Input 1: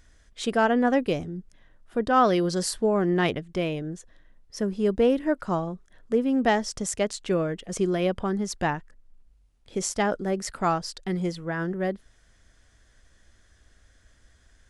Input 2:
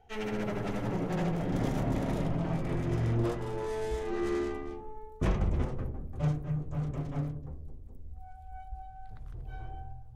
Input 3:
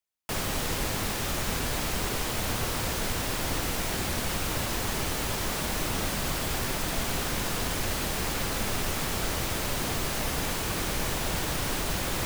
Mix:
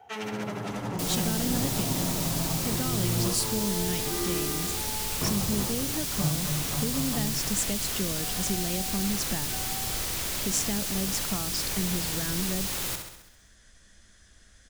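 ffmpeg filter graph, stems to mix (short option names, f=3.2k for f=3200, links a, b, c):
-filter_complex "[0:a]equalizer=f=200:w=3.7:g=8.5,acompressor=threshold=-34dB:ratio=2,adelay=700,volume=0dB[a];[1:a]highpass=f=93:w=0.5412,highpass=f=93:w=1.3066,equalizer=f=1k:t=o:w=1.8:g=12.5,volume=0dB[b];[2:a]adelay=700,volume=-6.5dB,asplit=2[c][d];[d]volume=-7dB,aecho=0:1:66|132|198|264|330|396|462|528|594:1|0.57|0.325|0.185|0.106|0.0602|0.0343|0.0195|0.0111[e];[a][b][c][e]amix=inputs=4:normalize=0,highshelf=f=2.4k:g=9,acrossover=split=320|3000[f][g][h];[g]acompressor=threshold=-37dB:ratio=6[i];[f][i][h]amix=inputs=3:normalize=0"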